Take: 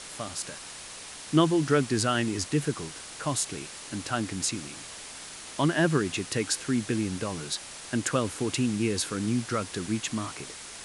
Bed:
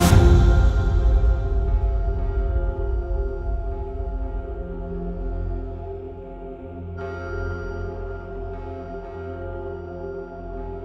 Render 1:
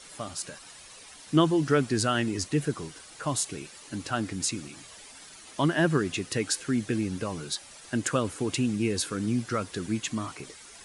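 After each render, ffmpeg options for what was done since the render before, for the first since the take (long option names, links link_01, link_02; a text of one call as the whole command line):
ffmpeg -i in.wav -af "afftdn=noise_reduction=10:noise_floor=-43" out.wav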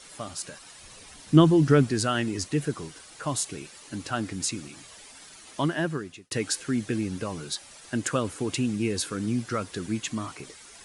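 ffmpeg -i in.wav -filter_complex "[0:a]asettb=1/sr,asplit=3[link_01][link_02][link_03];[link_01]atrim=end=0.824[link_04];[link_02]atrim=start=0.82:end=1.91,asetpts=PTS-STARTPTS,afade=type=in:duration=0.004:curve=qsin,afade=type=out:start_time=1.086:duration=0.004:curve=qsin,lowshelf=frequency=280:gain=10.5[link_05];[link_03]atrim=start=1.906[link_06];[link_04][link_05]acrossfade=duration=0.004:curve1=hsin:curve2=qsin[link_07];[link_07][link_06]acrossfade=duration=0.004:curve1=qsin:curve2=hsin,asplit=2[link_08][link_09];[link_08]atrim=end=6.31,asetpts=PTS-STARTPTS,afade=type=out:start_time=5.55:duration=0.76[link_10];[link_09]atrim=start=6.31,asetpts=PTS-STARTPTS,afade=type=in:duration=0.004:curve=hsin[link_11];[link_10][link_11]concat=n=2:v=0:a=1" out.wav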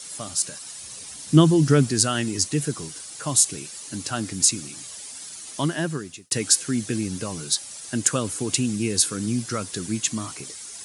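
ffmpeg -i in.wav -af "highpass=84,bass=frequency=250:gain=4,treble=frequency=4000:gain=13" out.wav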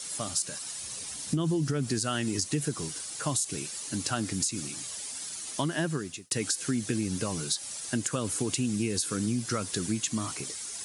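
ffmpeg -i in.wav -af "alimiter=limit=-13.5dB:level=0:latency=1:release=107,acompressor=threshold=-25dB:ratio=6" out.wav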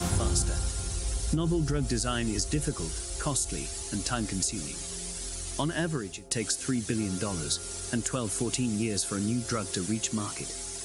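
ffmpeg -i in.wav -i bed.wav -filter_complex "[1:a]volume=-14.5dB[link_01];[0:a][link_01]amix=inputs=2:normalize=0" out.wav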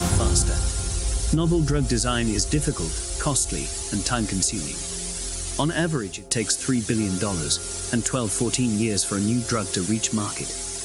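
ffmpeg -i in.wav -af "volume=6.5dB" out.wav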